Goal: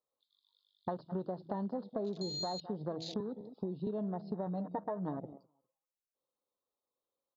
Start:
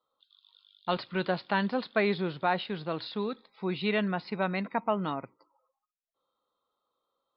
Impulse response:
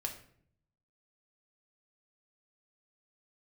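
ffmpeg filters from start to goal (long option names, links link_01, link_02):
-filter_complex "[0:a]asettb=1/sr,asplit=3[link_01][link_02][link_03];[link_01]atrim=end=3.204[link_04];[link_02]atrim=start=3.2:end=3.87,asetpts=PTS-STARTPTS,afade=type=in:duration=0.004:curve=qsin,afade=type=out:start_time=0.666:duration=0.004:curve=qsin,acrossover=split=230|3100[link_05][link_06][link_07];[link_05]acompressor=threshold=-41dB:ratio=4[link_08];[link_06]acompressor=threshold=-37dB:ratio=4[link_09];[link_07]acompressor=threshold=-56dB:ratio=4[link_10];[link_08][link_09][link_10]amix=inputs=3:normalize=0[link_11];[link_03]atrim=start=3.866[link_12];[link_04][link_11]acrossfade=duration=0.004:curve1=hsin:curve2=qsin[link_13];[link_13][link_12]acrossfade=duration=0.004:curve1=qsin:curve2=hsin,asuperstop=centerf=2000:order=4:qfactor=0.5,highshelf=frequency=2200:gain=3.5,asplit=2[link_14][link_15];[link_15]adelay=204,lowpass=frequency=1300:poles=1,volume=-18dB,asplit=2[link_16][link_17];[link_17]adelay=204,lowpass=frequency=1300:poles=1,volume=0.16[link_18];[link_14][link_16][link_18]amix=inputs=3:normalize=0,asettb=1/sr,asplit=3[link_19][link_20][link_21];[link_19]atrim=end=2.214[link_22];[link_20]atrim=start=2.21:end=2.61,asetpts=PTS-STARTPTS,afade=type=in:duration=0.004:curve=qsin,afade=type=out:start_time=0.396:duration=0.004:curve=qsin,aeval=exprs='val(0)+0.0224*sin(2*PI*4200*n/s)':channel_layout=same[link_23];[link_21]atrim=start=2.606[link_24];[link_22][link_23]acrossfade=duration=0.004:curve1=hsin:curve2=qsin[link_25];[link_25][link_24]acrossfade=duration=0.004:curve1=qsin:curve2=hsin,asettb=1/sr,asplit=3[link_26][link_27][link_28];[link_26]atrim=end=4.464[link_29];[link_27]atrim=start=4.46:end=5.17,asetpts=PTS-STARTPTS,afade=type=in:duration=0.004:curve=qsin,afade=type=out:start_time=0.706:duration=0.004:curve=qsin,aecho=1:1:6.6:0.7,atrim=end_sample=31311[link_30];[link_28]atrim=start=5.166[link_31];[link_29][link_30]acrossfade=duration=0.004:curve1=hsin:curve2=qsin[link_32];[link_32][link_31]acrossfade=duration=0.004:curve1=qsin:curve2=hsin,bandreject=frequency=163.1:width_type=h:width=4,bandreject=frequency=326.2:width_type=h:width=4,bandreject=frequency=489.3:width_type=h:width=4,bandreject=frequency=652.4:width_type=h:width=4,bandreject=frequency=815.5:width_type=h:width=4,bandreject=frequency=978.6:width_type=h:width=4,bandreject=frequency=1141.7:width_type=h:width=4,bandreject=frequency=1304.8:width_type=h:width=4,bandreject=frequency=1467.9:width_type=h:width=4,bandreject=frequency=1631:width_type=h:width=4,bandreject=frequency=1794.1:width_type=h:width=4,bandreject=frequency=1957.2:width_type=h:width=4,bandreject=frequency=2120.3:width_type=h:width=4,bandreject=frequency=2283.4:width_type=h:width=4,bandreject=frequency=2446.5:width_type=h:width=4,bandreject=frequency=2609.6:width_type=h:width=4,bandreject=frequency=2772.7:width_type=h:width=4,bandreject=frequency=2935.8:width_type=h:width=4,bandreject=frequency=3098.9:width_type=h:width=4,bandreject=frequency=3262:width_type=h:width=4,bandreject=frequency=3425.1:width_type=h:width=4,bandreject=frequency=3588.2:width_type=h:width=4,bandreject=frequency=3751.3:width_type=h:width=4,alimiter=limit=-22.5dB:level=0:latency=1:release=408,afwtdn=0.00631,acompressor=threshold=-44dB:ratio=6,volume=8.5dB"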